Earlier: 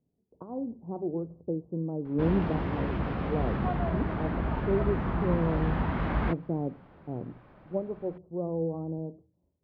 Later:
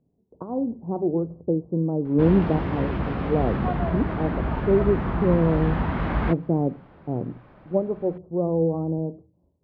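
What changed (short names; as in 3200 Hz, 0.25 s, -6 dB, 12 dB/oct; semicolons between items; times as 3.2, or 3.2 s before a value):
speech +8.5 dB; background +4.0 dB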